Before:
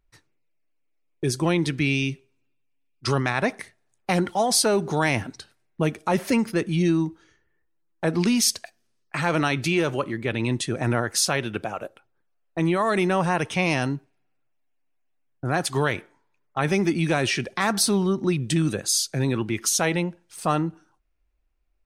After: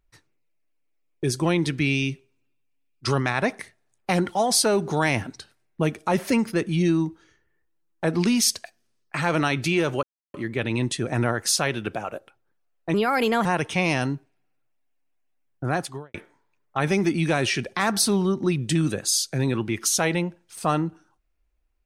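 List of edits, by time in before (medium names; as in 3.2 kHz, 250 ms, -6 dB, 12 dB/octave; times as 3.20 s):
10.03 s: insert silence 0.31 s
12.63–13.26 s: speed 123%
15.47–15.95 s: studio fade out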